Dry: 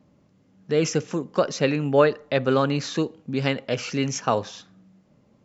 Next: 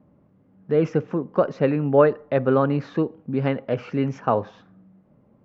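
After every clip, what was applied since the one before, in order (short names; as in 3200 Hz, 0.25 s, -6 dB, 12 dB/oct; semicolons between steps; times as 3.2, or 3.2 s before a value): LPF 1400 Hz 12 dB/oct; gain +2 dB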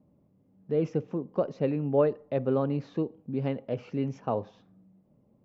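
bell 1500 Hz -10.5 dB 1.1 oct; gain -6.5 dB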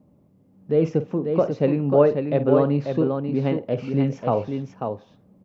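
tapped delay 49/541 ms -13.5/-5.5 dB; gain +7 dB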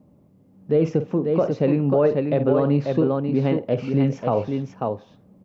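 limiter -12 dBFS, peak gain reduction 8 dB; gain +2.5 dB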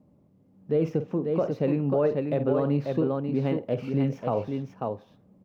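median filter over 5 samples; gain -5.5 dB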